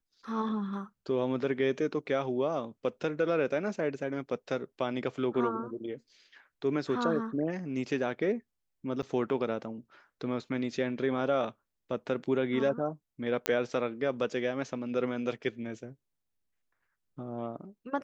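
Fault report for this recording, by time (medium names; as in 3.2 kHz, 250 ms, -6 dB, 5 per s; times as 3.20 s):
9.02–9.03 s: dropout 8 ms
13.46 s: pop -11 dBFS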